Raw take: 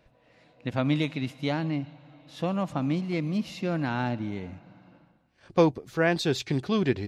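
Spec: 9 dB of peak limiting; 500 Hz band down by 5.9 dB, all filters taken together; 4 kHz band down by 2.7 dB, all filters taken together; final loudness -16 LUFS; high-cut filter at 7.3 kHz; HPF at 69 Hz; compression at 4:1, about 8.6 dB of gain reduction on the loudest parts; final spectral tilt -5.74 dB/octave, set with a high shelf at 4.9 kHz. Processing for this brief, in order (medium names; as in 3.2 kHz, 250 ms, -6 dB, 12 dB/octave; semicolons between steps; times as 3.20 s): high-pass 69 Hz; low-pass 7.3 kHz; peaking EQ 500 Hz -7.5 dB; peaking EQ 4 kHz -6.5 dB; treble shelf 4.9 kHz +8.5 dB; compression 4:1, threshold -30 dBFS; trim +20.5 dB; peak limiter -5.5 dBFS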